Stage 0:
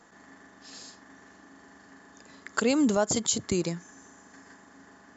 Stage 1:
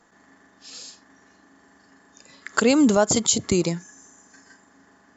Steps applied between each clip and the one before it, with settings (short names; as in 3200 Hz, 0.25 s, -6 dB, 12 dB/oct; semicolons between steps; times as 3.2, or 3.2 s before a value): spectral noise reduction 9 dB; gain +6.5 dB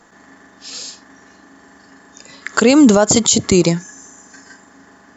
maximiser +11 dB; gain -1 dB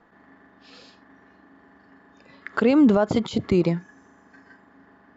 air absorption 360 m; gain -6.5 dB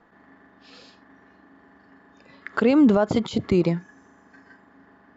nothing audible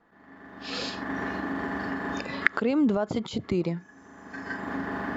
recorder AGC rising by 30 dB/s; gain -7 dB